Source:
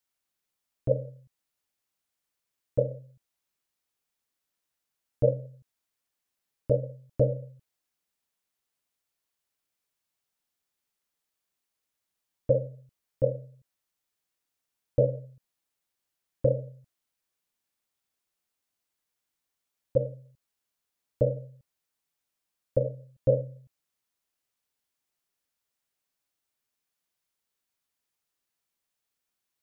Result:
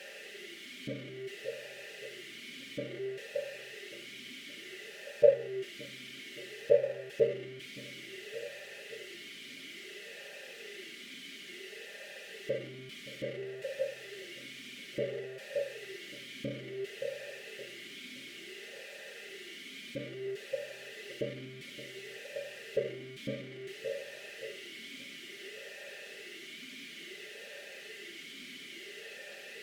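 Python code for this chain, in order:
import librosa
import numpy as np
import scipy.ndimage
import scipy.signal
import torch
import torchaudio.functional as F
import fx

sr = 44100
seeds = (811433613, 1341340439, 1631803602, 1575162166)

y = x + 0.5 * 10.0 ** (-28.5 / 20.0) * np.sign(x)
y = y + 0.73 * np.pad(y, (int(5.0 * sr / 1000.0), 0))[:len(y)]
y = fx.echo_feedback(y, sr, ms=571, feedback_pct=52, wet_db=-13)
y = fx.vowel_sweep(y, sr, vowels='e-i', hz=0.58)
y = y * 10.0 ** (5.5 / 20.0)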